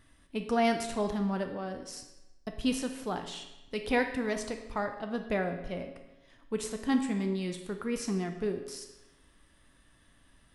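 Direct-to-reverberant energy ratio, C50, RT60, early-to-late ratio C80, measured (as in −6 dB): 5.0 dB, 8.0 dB, 1.0 s, 10.0 dB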